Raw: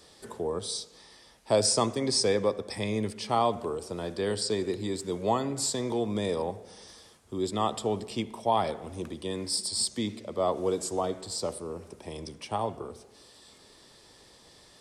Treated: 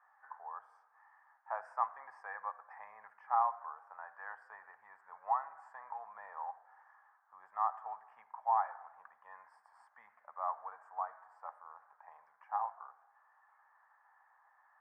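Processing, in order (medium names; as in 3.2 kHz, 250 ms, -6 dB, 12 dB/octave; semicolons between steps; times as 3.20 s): elliptic band-pass 790–1700 Hz, stop band 50 dB; trim -2 dB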